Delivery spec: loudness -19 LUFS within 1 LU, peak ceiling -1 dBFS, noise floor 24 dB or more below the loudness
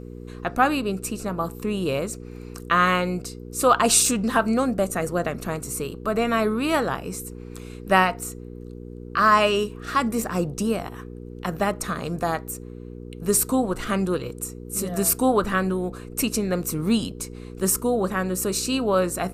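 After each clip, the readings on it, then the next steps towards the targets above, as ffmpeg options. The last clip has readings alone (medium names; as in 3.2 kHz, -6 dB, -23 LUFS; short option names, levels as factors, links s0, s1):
hum 60 Hz; highest harmonic 480 Hz; hum level -36 dBFS; loudness -23.5 LUFS; peak level -3.5 dBFS; loudness target -19.0 LUFS
-> -af "bandreject=f=60:t=h:w=4,bandreject=f=120:t=h:w=4,bandreject=f=180:t=h:w=4,bandreject=f=240:t=h:w=4,bandreject=f=300:t=h:w=4,bandreject=f=360:t=h:w=4,bandreject=f=420:t=h:w=4,bandreject=f=480:t=h:w=4"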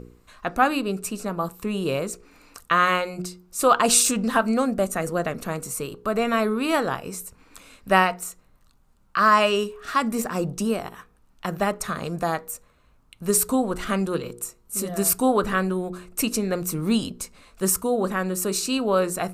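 hum not found; loudness -23.5 LUFS; peak level -3.5 dBFS; loudness target -19.0 LUFS
-> -af "volume=1.68,alimiter=limit=0.891:level=0:latency=1"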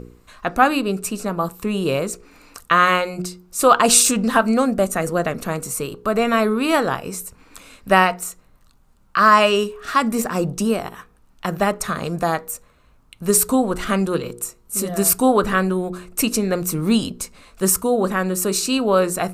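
loudness -19.0 LUFS; peak level -1.0 dBFS; noise floor -54 dBFS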